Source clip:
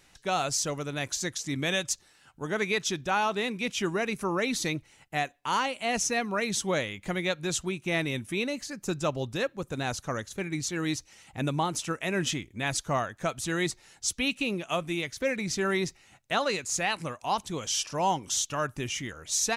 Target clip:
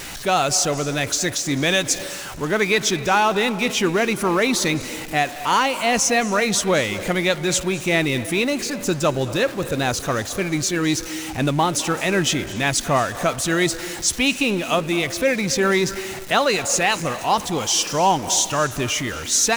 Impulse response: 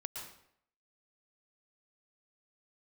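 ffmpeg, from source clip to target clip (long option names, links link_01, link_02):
-filter_complex "[0:a]aeval=exprs='val(0)+0.5*0.015*sgn(val(0))':channel_layout=same,asplit=2[link_01][link_02];[link_02]lowshelf=frequency=160:width_type=q:width=1.5:gain=-12.5[link_03];[1:a]atrim=start_sample=2205,asetrate=23373,aresample=44100[link_04];[link_03][link_04]afir=irnorm=-1:irlink=0,volume=-12.5dB[link_05];[link_01][link_05]amix=inputs=2:normalize=0,volume=6.5dB"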